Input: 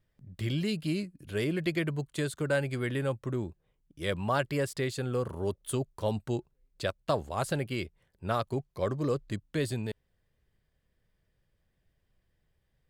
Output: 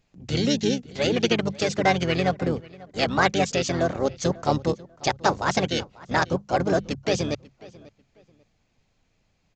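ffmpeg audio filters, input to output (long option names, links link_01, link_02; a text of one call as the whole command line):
ffmpeg -i in.wav -filter_complex "[0:a]lowshelf=frequency=61:gain=-8,bandreject=frequency=50:width_type=h:width=6,bandreject=frequency=100:width_type=h:width=6,bandreject=frequency=150:width_type=h:width=6,acontrast=80,crystalizer=i=1.5:c=0,asplit=3[link_01][link_02][link_03];[link_02]asetrate=22050,aresample=44100,atempo=2,volume=-10dB[link_04];[link_03]asetrate=33038,aresample=44100,atempo=1.33484,volume=-5dB[link_05];[link_01][link_04][link_05]amix=inputs=3:normalize=0,asplit=2[link_06][link_07];[link_07]adelay=732,lowpass=frequency=2500:poles=1,volume=-21dB,asplit=2[link_08][link_09];[link_09]adelay=732,lowpass=frequency=2500:poles=1,volume=0.27[link_10];[link_06][link_08][link_10]amix=inputs=3:normalize=0,asetrate=59535,aresample=44100,aresample=16000,aresample=44100" out.wav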